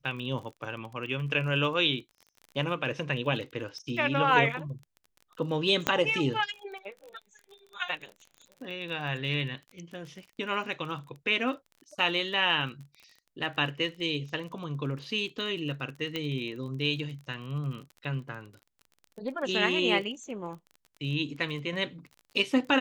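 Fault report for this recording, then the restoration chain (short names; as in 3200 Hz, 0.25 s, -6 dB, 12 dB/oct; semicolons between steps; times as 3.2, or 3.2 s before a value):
crackle 30/s -39 dBFS
5.87 pop -10 dBFS
16.16 pop -19 dBFS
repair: de-click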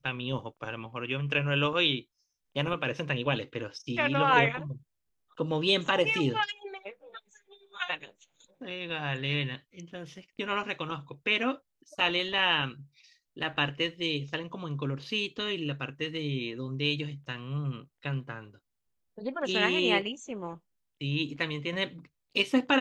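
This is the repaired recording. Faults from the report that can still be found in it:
none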